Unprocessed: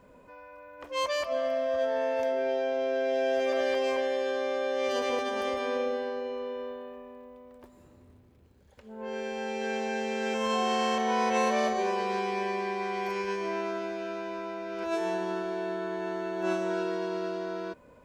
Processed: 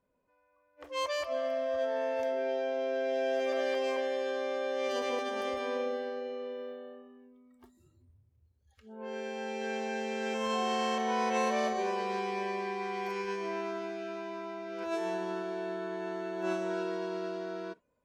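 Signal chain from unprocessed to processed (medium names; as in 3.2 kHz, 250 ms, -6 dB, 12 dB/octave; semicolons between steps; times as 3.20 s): spectral noise reduction 19 dB; trim -3.5 dB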